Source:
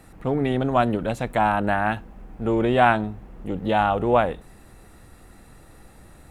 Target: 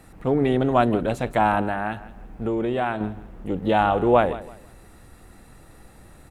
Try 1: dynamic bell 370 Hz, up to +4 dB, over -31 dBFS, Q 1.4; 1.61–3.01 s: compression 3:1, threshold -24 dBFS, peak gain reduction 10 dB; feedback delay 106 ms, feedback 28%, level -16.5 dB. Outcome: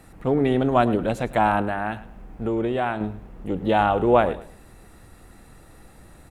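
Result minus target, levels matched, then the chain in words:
echo 58 ms early
dynamic bell 370 Hz, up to +4 dB, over -31 dBFS, Q 1.4; 1.61–3.01 s: compression 3:1, threshold -24 dBFS, peak gain reduction 10 dB; feedback delay 164 ms, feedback 28%, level -16.5 dB

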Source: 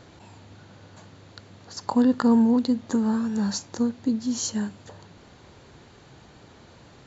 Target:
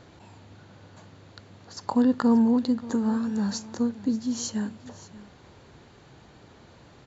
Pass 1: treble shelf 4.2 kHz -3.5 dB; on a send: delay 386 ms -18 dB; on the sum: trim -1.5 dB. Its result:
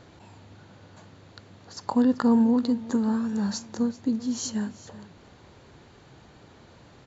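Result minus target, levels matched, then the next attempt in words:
echo 196 ms early
treble shelf 4.2 kHz -3.5 dB; on a send: delay 582 ms -18 dB; on the sum: trim -1.5 dB

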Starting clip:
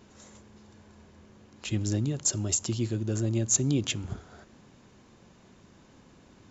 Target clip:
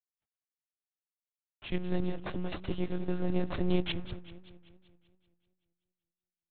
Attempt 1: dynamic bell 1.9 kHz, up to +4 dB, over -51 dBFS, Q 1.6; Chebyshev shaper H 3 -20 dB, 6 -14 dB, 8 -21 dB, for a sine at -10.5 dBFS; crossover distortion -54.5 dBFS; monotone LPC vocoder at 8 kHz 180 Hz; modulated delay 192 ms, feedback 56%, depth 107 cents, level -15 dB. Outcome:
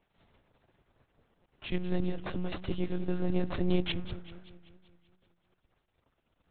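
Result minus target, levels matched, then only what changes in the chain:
crossover distortion: distortion -7 dB
change: crossover distortion -44.5 dBFS

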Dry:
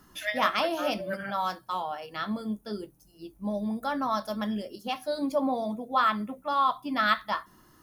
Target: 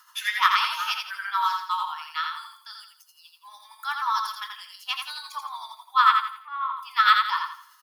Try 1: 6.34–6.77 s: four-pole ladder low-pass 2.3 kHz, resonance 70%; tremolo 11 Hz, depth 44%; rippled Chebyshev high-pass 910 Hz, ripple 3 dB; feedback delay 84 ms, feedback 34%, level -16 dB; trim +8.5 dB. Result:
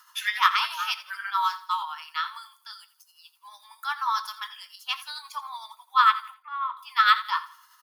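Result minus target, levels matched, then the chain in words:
echo-to-direct -11.5 dB
6.34–6.77 s: four-pole ladder low-pass 2.3 kHz, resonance 70%; tremolo 11 Hz, depth 44%; rippled Chebyshev high-pass 910 Hz, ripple 3 dB; feedback delay 84 ms, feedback 34%, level -4.5 dB; trim +8.5 dB

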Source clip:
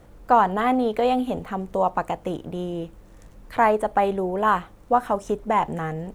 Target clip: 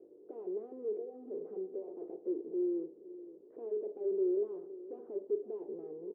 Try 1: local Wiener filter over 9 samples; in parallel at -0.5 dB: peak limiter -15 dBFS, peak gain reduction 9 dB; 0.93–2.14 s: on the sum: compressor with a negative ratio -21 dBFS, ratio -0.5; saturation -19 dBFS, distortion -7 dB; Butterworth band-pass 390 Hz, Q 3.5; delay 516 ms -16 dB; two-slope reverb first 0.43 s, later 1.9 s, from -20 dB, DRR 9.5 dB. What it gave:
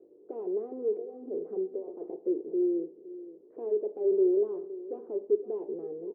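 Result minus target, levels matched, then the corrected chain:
saturation: distortion -5 dB
local Wiener filter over 9 samples; in parallel at -0.5 dB: peak limiter -15 dBFS, peak gain reduction 9 dB; 0.93–2.14 s: on the sum: compressor with a negative ratio -21 dBFS, ratio -0.5; saturation -28.5 dBFS, distortion -3 dB; Butterworth band-pass 390 Hz, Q 3.5; delay 516 ms -16 dB; two-slope reverb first 0.43 s, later 1.9 s, from -20 dB, DRR 9.5 dB

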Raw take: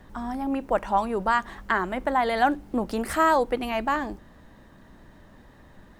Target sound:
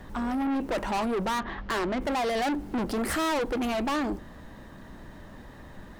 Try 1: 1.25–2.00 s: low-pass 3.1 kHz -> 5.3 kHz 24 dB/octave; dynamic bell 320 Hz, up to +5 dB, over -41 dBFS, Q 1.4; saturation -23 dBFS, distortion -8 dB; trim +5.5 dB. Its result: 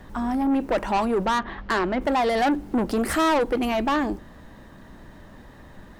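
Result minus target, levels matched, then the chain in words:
saturation: distortion -4 dB
1.25–2.00 s: low-pass 3.1 kHz -> 5.3 kHz 24 dB/octave; dynamic bell 320 Hz, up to +5 dB, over -41 dBFS, Q 1.4; saturation -31 dBFS, distortion -4 dB; trim +5.5 dB

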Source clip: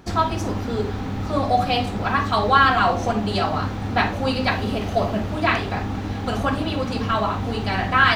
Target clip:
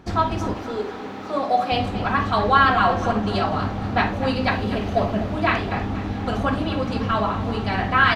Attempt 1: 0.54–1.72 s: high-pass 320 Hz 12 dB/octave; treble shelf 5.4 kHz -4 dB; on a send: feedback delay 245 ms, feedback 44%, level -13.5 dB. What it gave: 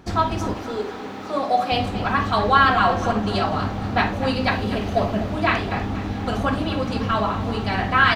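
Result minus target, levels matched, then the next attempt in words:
8 kHz band +3.5 dB
0.54–1.72 s: high-pass 320 Hz 12 dB/octave; treble shelf 5.4 kHz -10 dB; on a send: feedback delay 245 ms, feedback 44%, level -13.5 dB

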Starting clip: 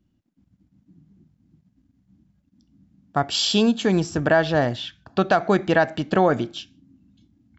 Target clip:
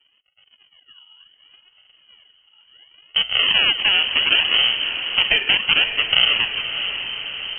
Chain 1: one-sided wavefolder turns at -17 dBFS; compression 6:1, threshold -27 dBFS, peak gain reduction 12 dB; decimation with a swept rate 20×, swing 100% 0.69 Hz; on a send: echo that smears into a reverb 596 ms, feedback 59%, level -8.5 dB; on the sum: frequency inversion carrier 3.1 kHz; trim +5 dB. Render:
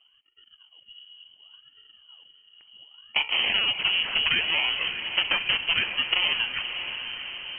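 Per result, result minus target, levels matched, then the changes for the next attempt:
compression: peak gain reduction +8 dB; decimation with a swept rate: distortion -5 dB
change: compression 6:1, threshold -17.5 dBFS, peak gain reduction 4 dB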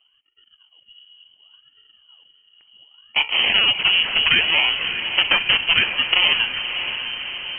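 decimation with a swept rate: distortion -6 dB
change: decimation with a swept rate 43×, swing 100% 0.69 Hz

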